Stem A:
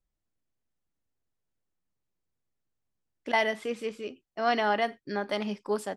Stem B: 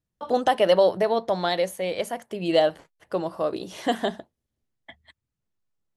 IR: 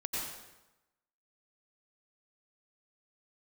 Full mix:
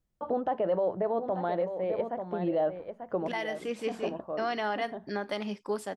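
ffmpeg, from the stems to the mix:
-filter_complex "[0:a]volume=1.12,asplit=2[s0][s1];[1:a]lowpass=1100,alimiter=limit=0.168:level=0:latency=1:release=11,volume=0.944,asplit=2[s2][s3];[s3]volume=0.355[s4];[s1]apad=whole_len=263019[s5];[s2][s5]sidechaincompress=threshold=0.00794:ratio=8:attack=16:release=152[s6];[s4]aecho=0:1:890:1[s7];[s0][s6][s7]amix=inputs=3:normalize=0,alimiter=limit=0.0944:level=0:latency=1:release=494"

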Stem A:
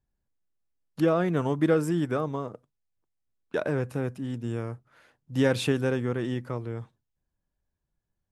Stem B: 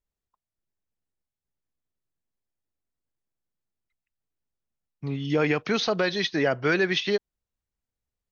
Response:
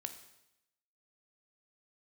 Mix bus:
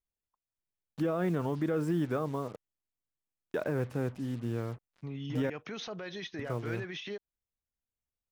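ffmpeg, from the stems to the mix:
-filter_complex "[0:a]aemphasis=mode=reproduction:type=50fm,acrusher=bits=7:mix=0:aa=0.5,volume=0.708,asplit=3[s0][s1][s2];[s0]atrim=end=5.5,asetpts=PTS-STARTPTS,afade=t=out:st=5.496:d=0.004:c=hsin[s3];[s1]atrim=start=5.5:end=6.39,asetpts=PTS-STARTPTS,volume=0[s4];[s2]atrim=start=6.39,asetpts=PTS-STARTPTS,afade=t=in:d=0.004:c=hsin[s5];[s3][s4][s5]concat=n=3:v=0:a=1[s6];[1:a]equalizer=f=4500:t=o:w=0.38:g=-9.5,acompressor=threshold=0.0631:ratio=6,alimiter=limit=0.0631:level=0:latency=1:release=23,volume=0.422[s7];[s6][s7]amix=inputs=2:normalize=0,alimiter=limit=0.0794:level=0:latency=1:release=46"

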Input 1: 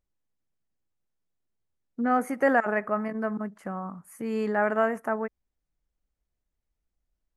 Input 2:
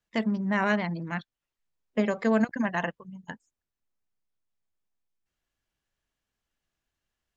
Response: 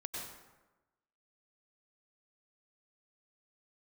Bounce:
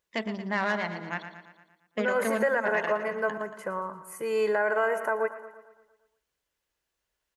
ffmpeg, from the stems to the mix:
-filter_complex "[0:a]aecho=1:1:2:0.79,volume=1.41,asplit=3[s0][s1][s2];[s1]volume=0.178[s3];[s2]volume=0.188[s4];[1:a]aeval=exprs='(tanh(7.94*val(0)+0.5)-tanh(0.5))/7.94':c=same,volume=1.19,asplit=3[s5][s6][s7];[s6]volume=0.158[s8];[s7]volume=0.335[s9];[2:a]atrim=start_sample=2205[s10];[s3][s8]amix=inputs=2:normalize=0[s11];[s11][s10]afir=irnorm=-1:irlink=0[s12];[s4][s9]amix=inputs=2:normalize=0,aecho=0:1:115|230|345|460|575|690|805|920:1|0.55|0.303|0.166|0.0915|0.0503|0.0277|0.0152[s13];[s0][s5][s12][s13]amix=inputs=4:normalize=0,highpass=f=450:p=1,alimiter=limit=0.158:level=0:latency=1:release=122"

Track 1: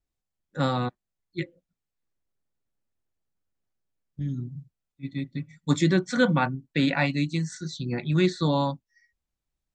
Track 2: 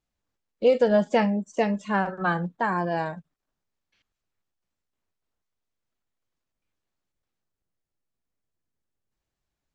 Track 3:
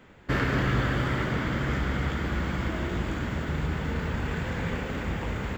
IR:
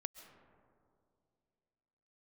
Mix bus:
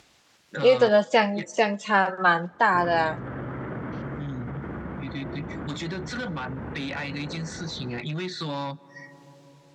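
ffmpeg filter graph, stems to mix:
-filter_complex "[0:a]tiltshelf=f=970:g=-4.5,acompressor=threshold=0.0398:ratio=6,aeval=exprs='(tanh(31.6*val(0)+0.15)-tanh(0.15))/31.6':c=same,volume=1.19,asplit=2[s0][s1];[s1]volume=0.251[s2];[1:a]aemphasis=mode=production:type=riaa,dynaudnorm=f=140:g=7:m=3.55,volume=0.596,asplit=2[s3][s4];[s4]volume=0.0944[s5];[2:a]lowpass=1200,adelay=2450,volume=0.335[s6];[s0][s6]amix=inputs=2:normalize=0,dynaudnorm=f=280:g=17:m=2.66,alimiter=level_in=1.5:limit=0.0631:level=0:latency=1:release=39,volume=0.668,volume=1[s7];[3:a]atrim=start_sample=2205[s8];[s2][s5]amix=inputs=2:normalize=0[s9];[s9][s8]afir=irnorm=-1:irlink=0[s10];[s3][s7][s10]amix=inputs=3:normalize=0,acompressor=mode=upward:threshold=0.0501:ratio=2.5,highpass=110,lowpass=4500"

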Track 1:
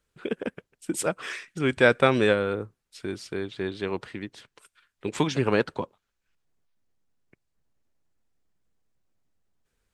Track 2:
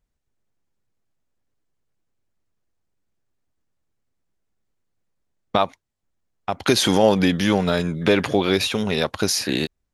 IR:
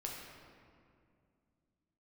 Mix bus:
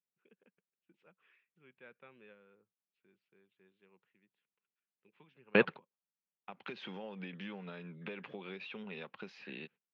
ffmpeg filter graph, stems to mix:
-filter_complex "[0:a]volume=0.841[s0];[1:a]acompressor=threshold=0.112:ratio=6,highpass=140,volume=0.1,asplit=2[s1][s2];[s2]apad=whole_len=437940[s3];[s0][s3]sidechaingate=range=0.0178:threshold=0.00126:ratio=16:detection=peak[s4];[s4][s1]amix=inputs=2:normalize=0,highpass=f=150:w=0.5412,highpass=f=150:w=1.3066,equalizer=f=190:t=q:w=4:g=3,equalizer=f=290:t=q:w=4:g=-8,equalizer=f=650:t=q:w=4:g=-7,equalizer=f=2600:t=q:w=4:g=7,lowpass=f=3100:w=0.5412,lowpass=f=3100:w=1.3066"

